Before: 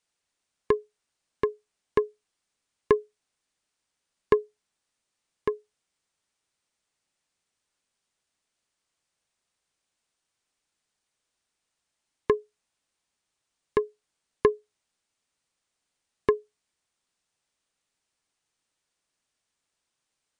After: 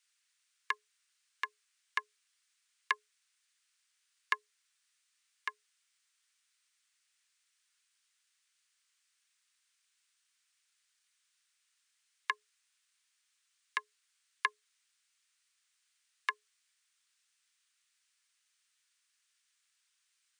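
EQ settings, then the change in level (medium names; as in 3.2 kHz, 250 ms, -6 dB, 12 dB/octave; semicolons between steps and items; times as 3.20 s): high-pass 1.4 kHz 24 dB/octave; +5.0 dB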